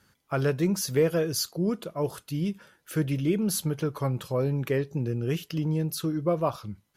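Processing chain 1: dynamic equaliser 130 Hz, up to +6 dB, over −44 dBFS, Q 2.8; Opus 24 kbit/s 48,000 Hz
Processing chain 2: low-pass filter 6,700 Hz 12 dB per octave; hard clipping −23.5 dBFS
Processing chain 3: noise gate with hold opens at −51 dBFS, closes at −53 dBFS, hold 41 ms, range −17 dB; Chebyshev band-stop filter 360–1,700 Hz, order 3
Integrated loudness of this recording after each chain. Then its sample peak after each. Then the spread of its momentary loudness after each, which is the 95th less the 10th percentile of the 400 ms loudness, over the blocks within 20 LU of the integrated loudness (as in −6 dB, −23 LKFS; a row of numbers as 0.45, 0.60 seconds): −26.5, −30.0, −30.5 LKFS; −12.5, −23.5, −15.0 dBFS; 6, 5, 8 LU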